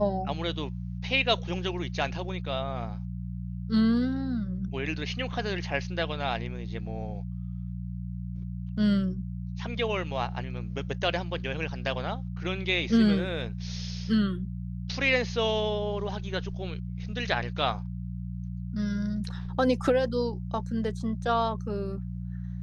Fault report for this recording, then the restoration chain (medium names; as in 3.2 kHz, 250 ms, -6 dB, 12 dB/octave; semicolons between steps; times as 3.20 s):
hum 60 Hz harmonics 3 -35 dBFS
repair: de-hum 60 Hz, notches 3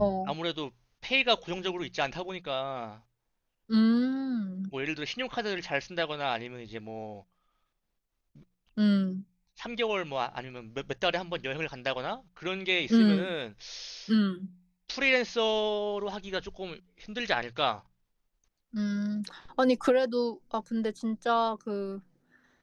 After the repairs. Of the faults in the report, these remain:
nothing left